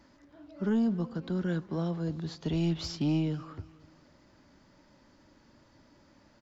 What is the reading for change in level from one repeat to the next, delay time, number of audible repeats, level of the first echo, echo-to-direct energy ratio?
-8.0 dB, 0.248 s, 2, -20.0 dB, -19.5 dB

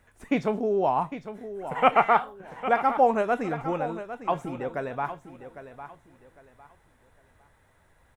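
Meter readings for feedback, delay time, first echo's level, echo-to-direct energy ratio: 28%, 0.804 s, -12.0 dB, -11.5 dB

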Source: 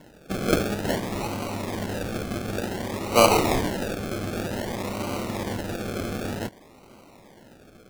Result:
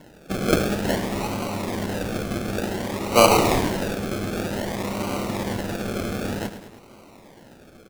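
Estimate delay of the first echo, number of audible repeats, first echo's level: 0.105 s, 3, -11.0 dB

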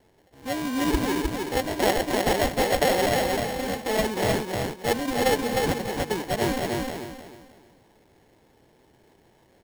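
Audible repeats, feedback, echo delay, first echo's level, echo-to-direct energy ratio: 4, 30%, 0.308 s, -3.0 dB, -2.5 dB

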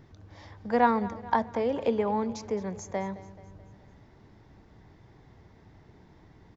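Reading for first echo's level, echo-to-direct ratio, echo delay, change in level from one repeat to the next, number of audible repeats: -17.5 dB, -16.0 dB, 0.216 s, -5.0 dB, 4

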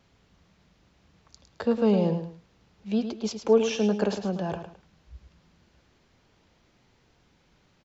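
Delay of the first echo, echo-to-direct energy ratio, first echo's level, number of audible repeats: 0.107 s, -8.5 dB, -9.0 dB, 2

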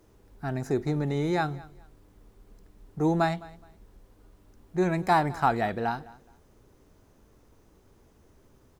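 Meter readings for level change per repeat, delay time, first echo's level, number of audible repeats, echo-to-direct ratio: -12.0 dB, 0.21 s, -21.0 dB, 2, -20.5 dB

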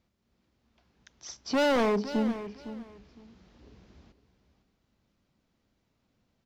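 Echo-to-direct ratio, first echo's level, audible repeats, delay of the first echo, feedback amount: -13.0 dB, -13.0 dB, 2, 0.509 s, 20%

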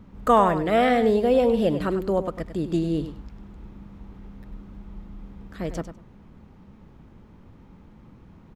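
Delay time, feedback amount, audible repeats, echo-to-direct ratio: 99 ms, 16%, 2, -11.0 dB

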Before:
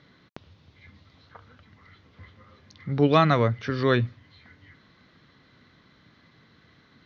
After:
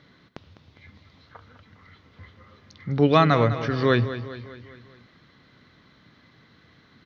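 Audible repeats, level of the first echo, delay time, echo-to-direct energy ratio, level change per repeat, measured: 4, -12.5 dB, 0.203 s, -11.0 dB, -5.5 dB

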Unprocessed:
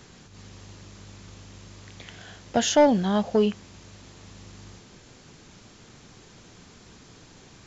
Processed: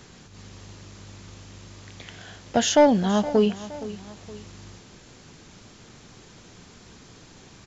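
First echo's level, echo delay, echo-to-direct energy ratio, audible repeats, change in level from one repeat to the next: -16.0 dB, 0.468 s, -15.0 dB, 2, -6.5 dB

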